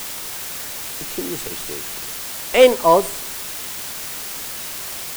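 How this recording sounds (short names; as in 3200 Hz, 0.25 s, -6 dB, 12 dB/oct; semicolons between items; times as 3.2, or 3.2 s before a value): a quantiser's noise floor 6-bit, dither triangular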